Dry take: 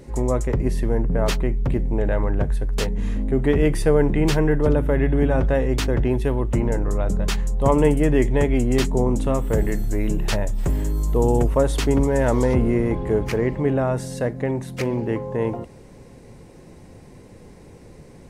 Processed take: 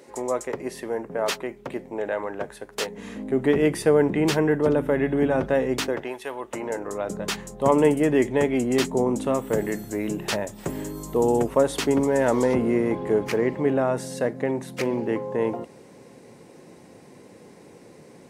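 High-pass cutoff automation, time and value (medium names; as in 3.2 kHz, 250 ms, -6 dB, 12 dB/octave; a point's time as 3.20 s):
2.78 s 430 Hz
3.45 s 200 Hz
5.77 s 200 Hz
6.17 s 830 Hz
7.33 s 210 Hz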